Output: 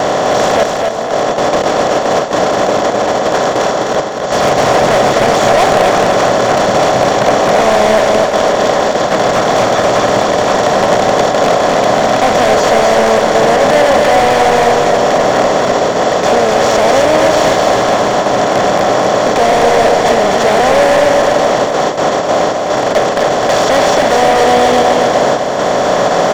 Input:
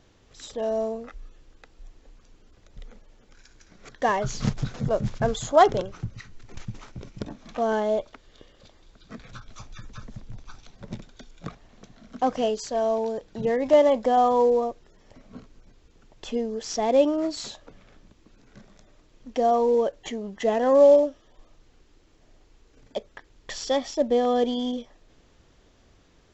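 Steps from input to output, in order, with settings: per-bin compression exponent 0.2; gate with hold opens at -8 dBFS; HPF 120 Hz; low shelf 180 Hz -5 dB; 0.63–4.32 negative-ratio compressor -20 dBFS, ratio -0.5; hard clip -14.5 dBFS, distortion -8 dB; feedback echo 0.255 s, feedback 46%, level -4 dB; gain +6.5 dB

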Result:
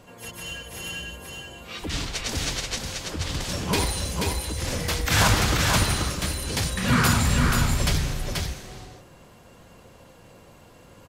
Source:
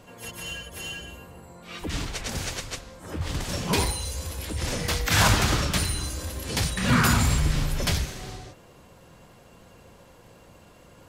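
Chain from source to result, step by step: 1.03–3.53 dynamic EQ 4300 Hz, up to +5 dB, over -48 dBFS, Q 0.75; echo 0.483 s -3.5 dB

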